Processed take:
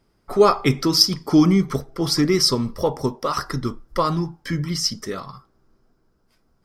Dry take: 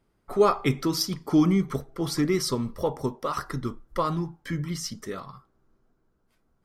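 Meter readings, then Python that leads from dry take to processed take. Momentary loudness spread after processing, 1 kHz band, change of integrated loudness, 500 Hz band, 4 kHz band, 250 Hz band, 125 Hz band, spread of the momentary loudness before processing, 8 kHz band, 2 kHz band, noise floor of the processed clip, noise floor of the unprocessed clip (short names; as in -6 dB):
11 LU, +5.5 dB, +7.0 dB, +5.5 dB, +13.0 dB, +5.5 dB, +5.5 dB, 12 LU, +8.0 dB, +5.5 dB, -65 dBFS, -70 dBFS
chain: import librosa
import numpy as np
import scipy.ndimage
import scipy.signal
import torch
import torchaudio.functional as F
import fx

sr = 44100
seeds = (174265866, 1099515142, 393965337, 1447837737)

y = fx.peak_eq(x, sr, hz=5100.0, db=10.0, octaves=0.3)
y = y * 10.0 ** (5.5 / 20.0)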